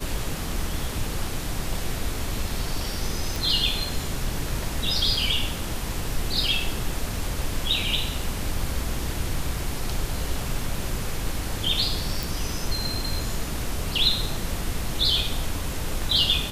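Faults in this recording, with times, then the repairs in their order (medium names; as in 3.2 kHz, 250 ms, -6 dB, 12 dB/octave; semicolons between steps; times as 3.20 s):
3.36 s: pop
12.23 s: pop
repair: de-click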